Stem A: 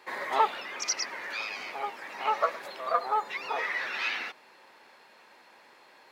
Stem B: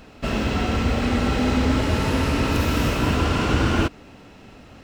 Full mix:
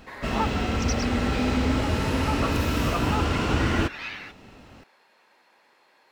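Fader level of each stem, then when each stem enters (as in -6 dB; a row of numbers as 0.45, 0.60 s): -4.5, -3.5 dB; 0.00, 0.00 s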